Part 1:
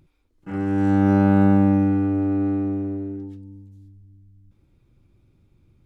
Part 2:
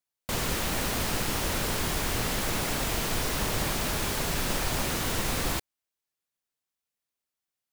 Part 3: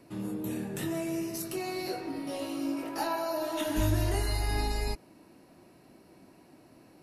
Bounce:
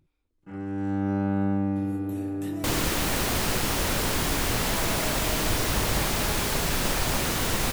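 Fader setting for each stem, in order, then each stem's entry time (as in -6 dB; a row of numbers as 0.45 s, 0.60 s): -9.5 dB, +3.0 dB, -7.0 dB; 0.00 s, 2.35 s, 1.65 s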